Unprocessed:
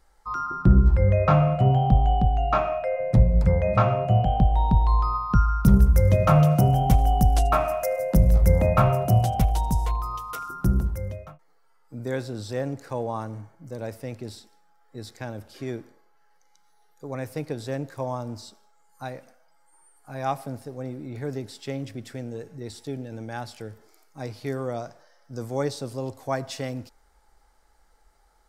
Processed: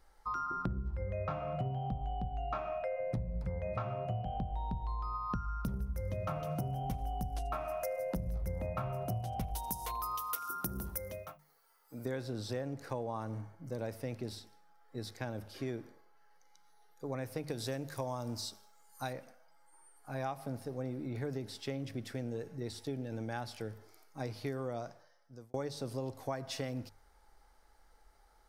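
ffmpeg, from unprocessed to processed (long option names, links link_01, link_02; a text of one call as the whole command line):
ffmpeg -i in.wav -filter_complex "[0:a]asplit=3[link_01][link_02][link_03];[link_01]afade=type=out:start_time=9.54:duration=0.02[link_04];[link_02]aemphasis=mode=production:type=bsi,afade=type=in:start_time=9.54:duration=0.02,afade=type=out:start_time=12.04:duration=0.02[link_05];[link_03]afade=type=in:start_time=12.04:duration=0.02[link_06];[link_04][link_05][link_06]amix=inputs=3:normalize=0,asettb=1/sr,asplit=3[link_07][link_08][link_09];[link_07]atrim=end=17.484[link_10];[link_08]atrim=start=17.48:end=19.13,asetpts=PTS-STARTPTS,afade=type=in:duration=0.004:curve=qsin,afade=type=out:start_time=1.646:duration=0.004:curve=qsin,highshelf=frequency=3600:gain=10.5[link_11];[link_09]atrim=start=19.126[link_12];[link_10][link_11]acrossfade=duration=0.004:curve1=hsin:curve2=qsin[link_13];[link_13][link_12]acrossfade=duration=0.004:curve1=qsin:curve2=hsin,asplit=2[link_14][link_15];[link_14]atrim=end=25.54,asetpts=PTS-STARTPTS,afade=type=out:start_time=24.68:duration=0.86[link_16];[link_15]atrim=start=25.54,asetpts=PTS-STARTPTS,afade=type=in:duration=0.004:curve=hsin[link_17];[link_16][link_17]concat=n=2:v=0:a=1,equalizer=frequency=7500:width_type=o:width=0.27:gain=-6.5,bandreject=frequency=50:width_type=h:width=6,bandreject=frequency=100:width_type=h:width=6,bandreject=frequency=150:width_type=h:width=6,bandreject=frequency=200:width_type=h:width=6,acompressor=threshold=-31dB:ratio=12,volume=-2.5dB" out.wav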